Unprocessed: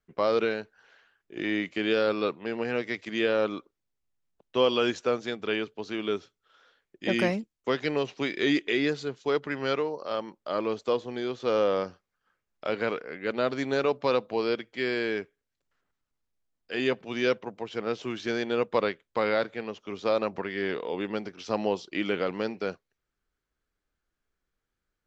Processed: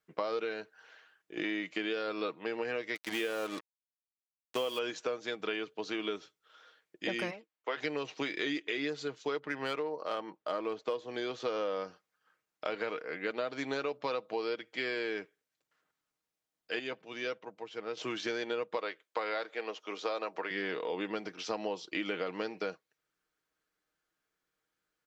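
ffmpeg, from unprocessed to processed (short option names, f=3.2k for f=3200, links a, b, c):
-filter_complex "[0:a]asettb=1/sr,asplit=3[a][b][c];[a]atrim=end=2.954[d];[b]atrim=start=2.95:end=4.79,asetpts=PTS-STARTPTS,afade=t=in:d=0.004:c=qsin,afade=t=out:st=1.836:d=0.004:c=qsin,acrusher=bits=5:mix=0:aa=0.5[e];[c]atrim=start=4.786[f];[d][e]acrossfade=d=0.004:c1=hsin:c2=qsin[g];[g][f]acrossfade=d=0.004:c1=qsin:c2=hsin,asplit=3[h][i][j];[h]afade=t=out:st=7.3:d=0.02[k];[i]highpass=520,lowpass=2.9k,afade=t=in:st=7.3:d=0.02,afade=t=out:st=7.76:d=0.02[l];[j]afade=t=in:st=7.76:d=0.02[m];[k][l][m]amix=inputs=3:normalize=0,asettb=1/sr,asplit=3[n][o][p];[n]atrim=end=9.394[q];[o]atrim=start=9.39:end=10.95,asetpts=PTS-STARTPTS,afade=t=in:d=0.004:c=qsin,afade=t=out:st=1.556:d=0.004:c=qsin,adynamicsmooth=sensitivity=4.5:basefreq=3.9k[r];[p]atrim=start=10.946[s];[q][r]acrossfade=d=0.004:c1=hsin:c2=qsin[t];[t][s]acrossfade=d=0.004:c1=qsin:c2=hsin,asettb=1/sr,asplit=3[u][v][w];[u]atrim=end=18.774[x];[v]atrim=start=18.77:end=20.51,asetpts=PTS-STARTPTS,afade=t=in:d=0.004:c=qsin,afade=t=out:st=1.736:d=0.004:c=qsin,highpass=360[y];[w]atrim=start=20.506[z];[x][y]acrossfade=d=0.004:c1=hsin:c2=qsin[aa];[aa][z]acrossfade=d=0.004:c1=qsin:c2=hsin,asplit=3[ab][ac][ad];[ab]atrim=end=16.792[ae];[ac]atrim=start=16.788:end=17.972,asetpts=PTS-STARTPTS,volume=-9dB[af];[ad]atrim=start=17.968[ag];[ae][af]acrossfade=d=0.004:c1=hsin:c2=hsin[ah];[ah][ag]acrossfade=d=0.004:c1=hsin:c2=hsin,highpass=f=360:p=1,aecho=1:1:6.4:0.38,acompressor=threshold=-33dB:ratio=6,volume=1.5dB"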